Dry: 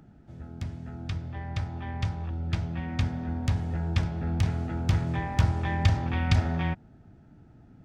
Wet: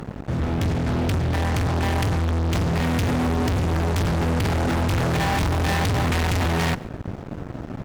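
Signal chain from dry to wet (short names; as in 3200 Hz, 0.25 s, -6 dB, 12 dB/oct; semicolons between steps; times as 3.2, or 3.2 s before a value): 4.2–5.12 tone controls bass -5 dB, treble -5 dB; fuzz box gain 47 dB, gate -54 dBFS; echo 0.141 s -22.5 dB; gain -7 dB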